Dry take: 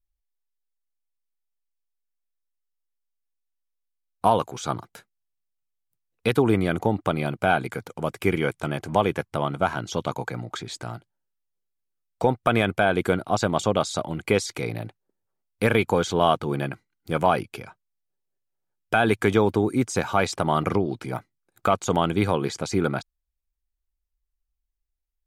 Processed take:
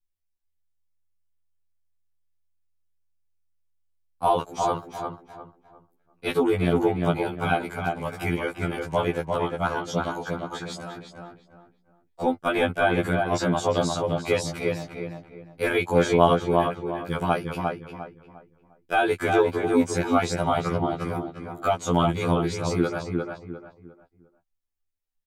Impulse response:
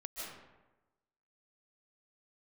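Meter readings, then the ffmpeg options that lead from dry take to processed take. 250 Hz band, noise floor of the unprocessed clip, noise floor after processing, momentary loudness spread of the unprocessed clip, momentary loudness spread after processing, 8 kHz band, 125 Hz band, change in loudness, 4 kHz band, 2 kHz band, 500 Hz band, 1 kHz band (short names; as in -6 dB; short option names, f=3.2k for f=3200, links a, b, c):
0.0 dB, -80 dBFS, -74 dBFS, 12 LU, 14 LU, -2.0 dB, -1.0 dB, -1.0 dB, -1.5 dB, -1.0 dB, 0.0 dB, -0.5 dB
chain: -filter_complex "[0:a]asplit=2[a][b];[b]adelay=352,lowpass=f=2k:p=1,volume=-3dB,asplit=2[c][d];[d]adelay=352,lowpass=f=2k:p=1,volume=0.32,asplit=2[e][f];[f]adelay=352,lowpass=f=2k:p=1,volume=0.32,asplit=2[g][h];[h]adelay=352,lowpass=f=2k:p=1,volume=0.32[i];[a][c][e][g][i]amix=inputs=5:normalize=0,afftfilt=real='re*2*eq(mod(b,4),0)':imag='im*2*eq(mod(b,4),0)':win_size=2048:overlap=0.75"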